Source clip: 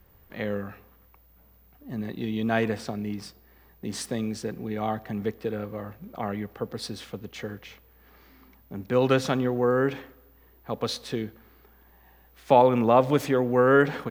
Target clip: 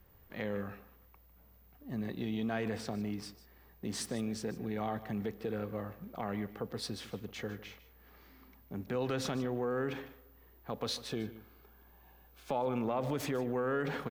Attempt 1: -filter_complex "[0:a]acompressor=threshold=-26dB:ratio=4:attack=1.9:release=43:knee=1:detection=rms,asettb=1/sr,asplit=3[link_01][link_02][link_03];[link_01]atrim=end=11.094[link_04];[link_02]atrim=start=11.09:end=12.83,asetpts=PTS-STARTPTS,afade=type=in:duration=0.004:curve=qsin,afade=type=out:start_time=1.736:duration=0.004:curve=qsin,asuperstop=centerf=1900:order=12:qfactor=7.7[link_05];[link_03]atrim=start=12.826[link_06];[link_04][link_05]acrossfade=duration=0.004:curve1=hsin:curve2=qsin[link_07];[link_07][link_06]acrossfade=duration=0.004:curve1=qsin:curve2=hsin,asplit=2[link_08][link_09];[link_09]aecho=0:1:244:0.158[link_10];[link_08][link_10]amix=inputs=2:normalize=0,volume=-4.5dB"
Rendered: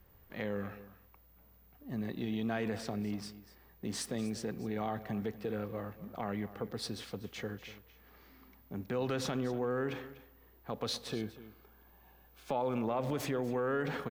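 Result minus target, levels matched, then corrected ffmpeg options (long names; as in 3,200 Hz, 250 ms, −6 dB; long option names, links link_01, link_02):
echo 93 ms late
-filter_complex "[0:a]acompressor=threshold=-26dB:ratio=4:attack=1.9:release=43:knee=1:detection=rms,asettb=1/sr,asplit=3[link_01][link_02][link_03];[link_01]atrim=end=11.094[link_04];[link_02]atrim=start=11.09:end=12.83,asetpts=PTS-STARTPTS,afade=type=in:duration=0.004:curve=qsin,afade=type=out:start_time=1.736:duration=0.004:curve=qsin,asuperstop=centerf=1900:order=12:qfactor=7.7[link_05];[link_03]atrim=start=12.826[link_06];[link_04][link_05]acrossfade=duration=0.004:curve1=hsin:curve2=qsin[link_07];[link_07][link_06]acrossfade=duration=0.004:curve1=qsin:curve2=hsin,asplit=2[link_08][link_09];[link_09]aecho=0:1:151:0.158[link_10];[link_08][link_10]amix=inputs=2:normalize=0,volume=-4.5dB"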